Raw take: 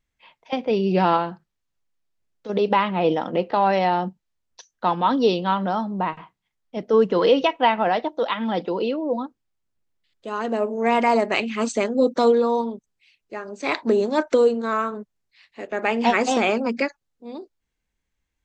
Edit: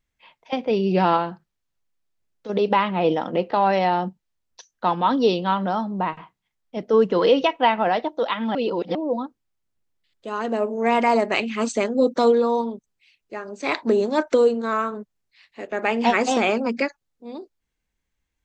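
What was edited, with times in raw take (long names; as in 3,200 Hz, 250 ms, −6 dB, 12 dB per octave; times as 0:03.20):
0:08.55–0:08.95: reverse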